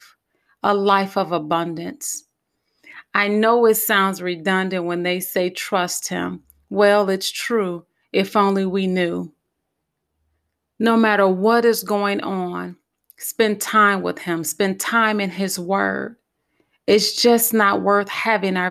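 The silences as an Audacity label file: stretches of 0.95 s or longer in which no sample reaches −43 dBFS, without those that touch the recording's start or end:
9.300000	10.800000	silence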